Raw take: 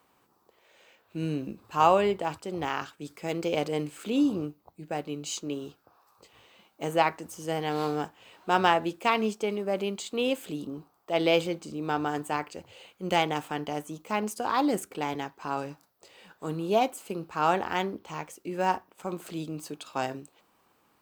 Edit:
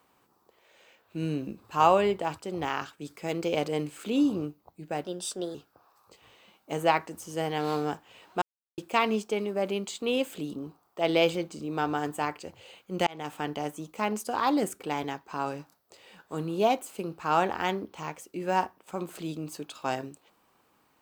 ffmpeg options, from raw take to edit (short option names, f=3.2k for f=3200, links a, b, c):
-filter_complex "[0:a]asplit=6[a][b][c][d][e][f];[a]atrim=end=5.044[g];[b]atrim=start=5.04:end=5.66,asetpts=PTS-STARTPTS,asetrate=53802,aresample=44100,atrim=end_sample=22411,asetpts=PTS-STARTPTS[h];[c]atrim=start=5.656:end=8.53,asetpts=PTS-STARTPTS,afade=t=out:st=2.87:d=0.004:c=hsin[i];[d]atrim=start=8.53:end=8.89,asetpts=PTS-STARTPTS,volume=0[j];[e]atrim=start=8.89:end=13.18,asetpts=PTS-STARTPTS,afade=t=in:d=0.004:c=hsin,afade=t=out:st=4.286:d=0.004:c=hsin[k];[f]atrim=start=13.18,asetpts=PTS-STARTPTS,afade=t=in:d=0.34[l];[g][h]acrossfade=d=0.004:c1=hsin:c2=hsin[m];[i][j][k][l]concat=n=4:v=0:a=1[n];[m][n]acrossfade=d=0.004:c1=hsin:c2=hsin"